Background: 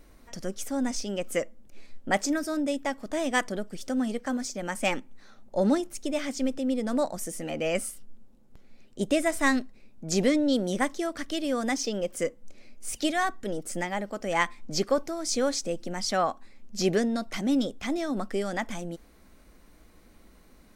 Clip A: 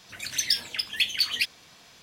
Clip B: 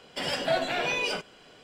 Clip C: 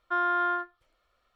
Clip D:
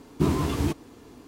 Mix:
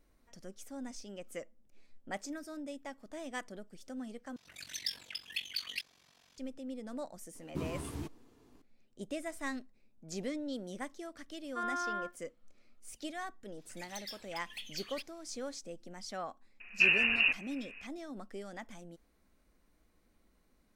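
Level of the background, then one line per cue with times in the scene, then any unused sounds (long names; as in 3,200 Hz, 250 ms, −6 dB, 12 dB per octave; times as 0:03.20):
background −15 dB
0:04.36: overwrite with A −10.5 dB + ring modulation 23 Hz
0:07.35: mix in D −15.5 dB
0:11.45: mix in C −10 dB
0:13.57: mix in A −18 dB + hard clipping −21 dBFS
0:16.60: mix in D −3.5 dB + voice inversion scrambler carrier 2,800 Hz
not used: B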